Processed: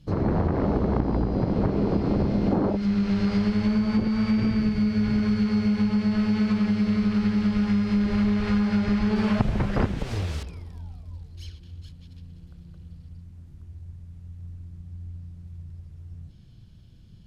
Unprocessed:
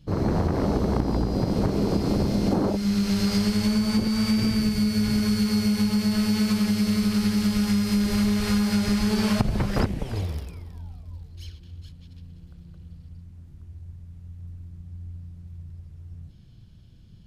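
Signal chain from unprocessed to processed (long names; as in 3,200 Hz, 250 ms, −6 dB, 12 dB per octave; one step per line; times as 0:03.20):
0:09.16–0:10.43: bit-depth reduction 6 bits, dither triangular
treble cut that deepens with the level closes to 2,500 Hz, closed at −21 dBFS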